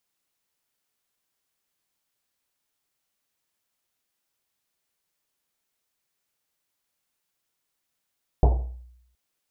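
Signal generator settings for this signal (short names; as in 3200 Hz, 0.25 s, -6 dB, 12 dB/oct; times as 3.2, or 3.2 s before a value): Risset drum length 0.72 s, pitch 61 Hz, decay 0.81 s, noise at 560 Hz, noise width 560 Hz, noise 20%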